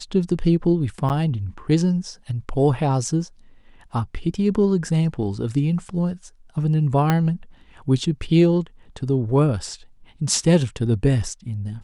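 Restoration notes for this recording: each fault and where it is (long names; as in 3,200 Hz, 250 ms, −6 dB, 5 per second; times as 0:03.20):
0:01.09–0:01.10: drop-out 9.1 ms
0:07.10: click −6 dBFS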